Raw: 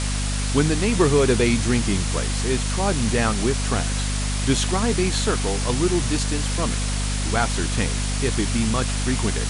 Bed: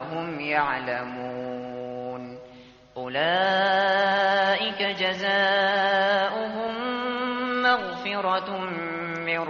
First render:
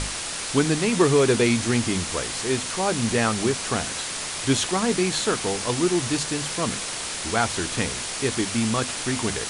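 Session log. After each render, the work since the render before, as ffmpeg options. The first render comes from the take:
-af "bandreject=f=50:t=h:w=6,bandreject=f=100:t=h:w=6,bandreject=f=150:t=h:w=6,bandreject=f=200:t=h:w=6,bandreject=f=250:t=h:w=6"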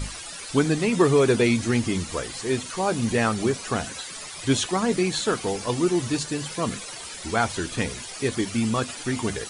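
-af "afftdn=nr=13:nf=-31"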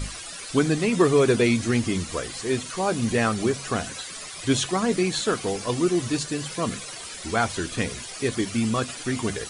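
-af "bandreject=f=880:w=12,bandreject=f=68.64:t=h:w=4,bandreject=f=137.28:t=h:w=4"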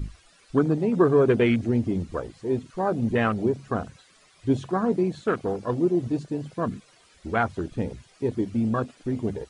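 -af "lowpass=f=3.5k:p=1,afwtdn=0.0355"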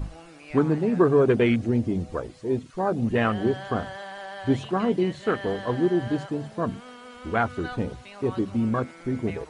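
-filter_complex "[1:a]volume=-16.5dB[a];[0:a][a]amix=inputs=2:normalize=0"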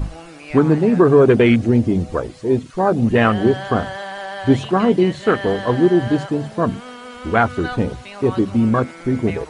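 -af "volume=8.5dB,alimiter=limit=-3dB:level=0:latency=1"

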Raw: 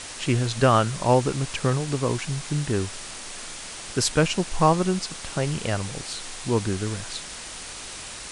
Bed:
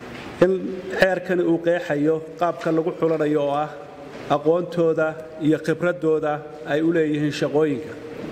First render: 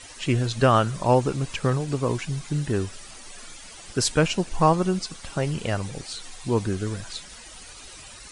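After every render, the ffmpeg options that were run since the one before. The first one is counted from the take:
-af "afftdn=nr=12:nf=-38"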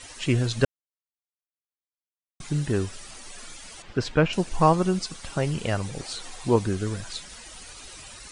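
-filter_complex "[0:a]asettb=1/sr,asplit=3[a][b][c];[a]atrim=end=3.824[d];[b]atrim=start=3.82:end=4.33,asetpts=PTS-STARTPTS,afade=t=in:d=0.004:c=qsin,afade=t=out:st=0.506:d=0.004:c=qsin,lowpass=2.8k[e];[c]atrim=start=4.326[f];[d][e]acrossfade=d=0.004:c1=hsin:c2=qsin[g];[g][f]acrossfade=d=0.004:c1=qsin:c2=hsin,asettb=1/sr,asplit=3[h][i][j];[h]atrim=end=5.994[k];[i]atrim=start=5.99:end=6.56,asetpts=PTS-STARTPTS,afade=t=in:d=0.004:c=qsin,afade=t=out:st=0.566:d=0.004:c=qsin,equalizer=f=650:t=o:w=2.3:g=5.5[l];[j]atrim=start=6.556[m];[k][l]acrossfade=d=0.004:c1=hsin:c2=qsin[n];[n][m]acrossfade=d=0.004:c1=qsin:c2=hsin,asplit=3[o][p][q];[o]atrim=end=0.65,asetpts=PTS-STARTPTS,afade=t=out:st=0.646:d=0.004:c=hsin[r];[p]atrim=start=0.65:end=2.4,asetpts=PTS-STARTPTS,volume=0[s];[q]atrim=start=2.4,asetpts=PTS-STARTPTS,afade=t=in:d=0.004:c=hsin[t];[r][s][t]concat=n=3:v=0:a=1"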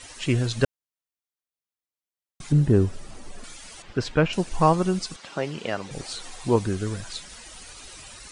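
-filter_complex "[0:a]asettb=1/sr,asplit=3[a][b][c];[a]atrim=end=2.524[d];[b]atrim=start=2.52:end=3.44,asetpts=PTS-STARTPTS,afade=t=in:d=0.004:c=qsin,afade=t=out:st=0.916:d=0.004:c=qsin,tiltshelf=f=970:g=8[e];[c]atrim=start=3.436[f];[d][e]acrossfade=d=0.004:c1=hsin:c2=qsin[g];[g][f]acrossfade=d=0.004:c1=qsin:c2=hsin,asettb=1/sr,asplit=3[h][i][j];[h]atrim=end=5.164[k];[i]atrim=start=5.16:end=5.91,asetpts=PTS-STARTPTS,afade=t=in:d=0.004:c=qsin,afade=t=out:st=0.746:d=0.004:c=qsin,highpass=230,lowpass=5.2k[l];[j]atrim=start=5.906[m];[k][l]acrossfade=d=0.004:c1=hsin:c2=qsin[n];[n][m]acrossfade=d=0.004:c1=qsin:c2=hsin"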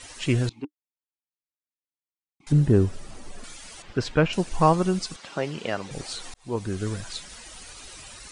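-filter_complex "[0:a]asettb=1/sr,asplit=3[a][b][c];[a]atrim=end=0.494[d];[b]atrim=start=0.49:end=2.47,asetpts=PTS-STARTPTS,afade=t=in:d=0.004:c=qsin,afade=t=out:st=1.976:d=0.004:c=qsin,asplit=3[e][f][g];[e]bandpass=f=300:t=q:w=8,volume=0dB[h];[f]bandpass=f=870:t=q:w=8,volume=-6dB[i];[g]bandpass=f=2.24k:t=q:w=8,volume=-9dB[j];[h][i][j]amix=inputs=3:normalize=0[k];[c]atrim=start=2.466[l];[d][k]acrossfade=d=0.004:c1=hsin:c2=qsin[m];[m][l]acrossfade=d=0.004:c1=qsin:c2=hsin,asplit=2[n][o];[n]atrim=end=6.34,asetpts=PTS-STARTPTS,afade=t=out:st=6.336:d=0.004:c=hsin[p];[o]atrim=start=6.34,asetpts=PTS-STARTPTS,afade=t=in:d=0.53[q];[p][q]concat=n=2:v=0:a=1"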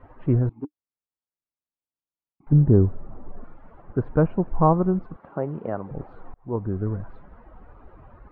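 -af "lowpass=f=1.2k:w=0.5412,lowpass=f=1.2k:w=1.3066,lowshelf=f=210:g=4.5"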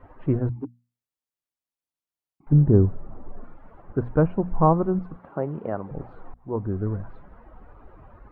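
-af "bandreject=f=60:t=h:w=6,bandreject=f=120:t=h:w=6,bandreject=f=180:t=h:w=6,bandreject=f=240:t=h:w=6"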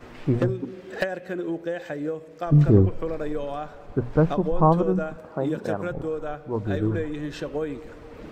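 -filter_complex "[1:a]volume=-9.5dB[a];[0:a][a]amix=inputs=2:normalize=0"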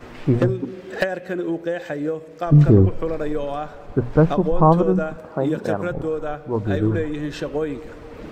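-af "volume=4.5dB,alimiter=limit=-3dB:level=0:latency=1"

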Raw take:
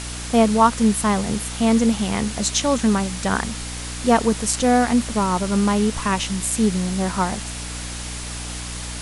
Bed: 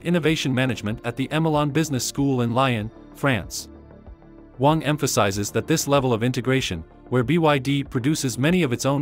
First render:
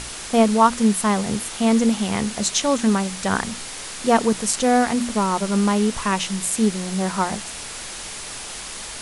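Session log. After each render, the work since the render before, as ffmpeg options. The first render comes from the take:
-af "bandreject=f=60:t=h:w=6,bandreject=f=120:t=h:w=6,bandreject=f=180:t=h:w=6,bandreject=f=240:t=h:w=6,bandreject=f=300:t=h:w=6"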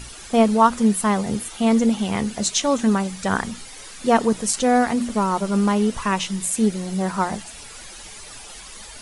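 -af "afftdn=nr=11:nf=-34"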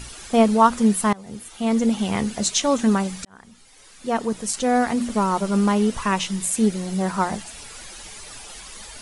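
-filter_complex "[0:a]asplit=3[a][b][c];[a]atrim=end=1.13,asetpts=PTS-STARTPTS,afade=t=out:st=1.126:d=0.004:c=hsin:silence=0.0668344[d];[b]atrim=start=1.13:end=3.25,asetpts=PTS-STARTPTS,afade=t=in:d=0.89:silence=0.0668344,afade=t=out:st=2.116:d=0.004:c=hsin[e];[c]atrim=start=3.25,asetpts=PTS-STARTPTS,afade=t=in:d=1.9[f];[d][e][f]concat=n=3:v=0:a=1"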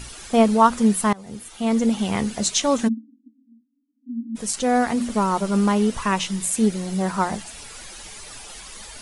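-filter_complex "[0:a]asplit=3[a][b][c];[a]afade=t=out:st=2.87:d=0.02[d];[b]asuperpass=centerf=260:order=20:qfactor=3.2,afade=t=in:st=2.87:d=0.02,afade=t=out:st=4.35:d=0.02[e];[c]afade=t=in:st=4.35:d=0.02[f];[d][e][f]amix=inputs=3:normalize=0"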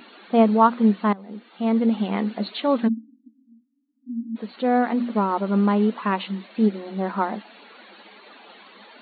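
-af "highshelf=f=2.8k:g=-11,afftfilt=real='re*between(b*sr/4096,190,4500)':imag='im*between(b*sr/4096,190,4500)':win_size=4096:overlap=0.75"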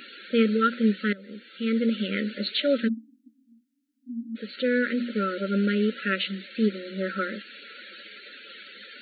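-af "afftfilt=real='re*(1-between(b*sr/4096,600,1300))':imag='im*(1-between(b*sr/4096,600,1300))':win_size=4096:overlap=0.75,tiltshelf=f=640:g=-6"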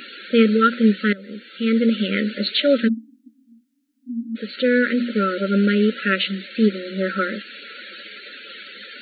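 -af "volume=6.5dB"

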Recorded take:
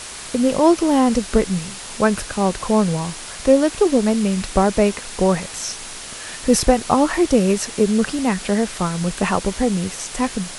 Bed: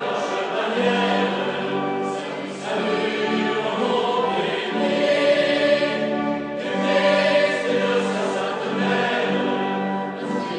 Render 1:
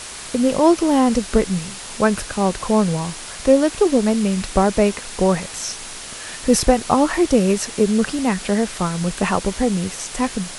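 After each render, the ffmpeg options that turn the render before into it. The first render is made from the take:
-af anull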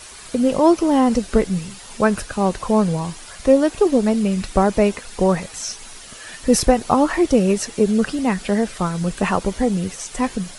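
-af "afftdn=nr=9:nf=-34"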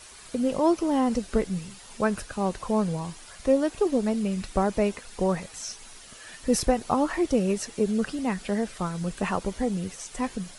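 -af "volume=-8dB"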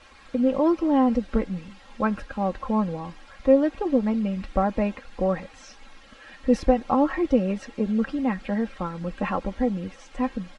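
-af "lowpass=2.7k,aecho=1:1:3.7:0.65"

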